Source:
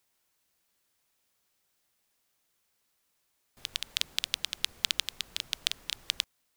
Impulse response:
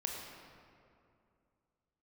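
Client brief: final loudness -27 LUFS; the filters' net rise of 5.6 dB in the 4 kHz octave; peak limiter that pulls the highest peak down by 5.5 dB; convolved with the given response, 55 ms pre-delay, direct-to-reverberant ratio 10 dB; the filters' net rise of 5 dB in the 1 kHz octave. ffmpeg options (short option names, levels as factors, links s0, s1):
-filter_complex "[0:a]equalizer=f=1000:t=o:g=6,equalizer=f=4000:t=o:g=6.5,alimiter=limit=0.631:level=0:latency=1,asplit=2[s0][s1];[1:a]atrim=start_sample=2205,adelay=55[s2];[s1][s2]afir=irnorm=-1:irlink=0,volume=0.266[s3];[s0][s3]amix=inputs=2:normalize=0,volume=1.33"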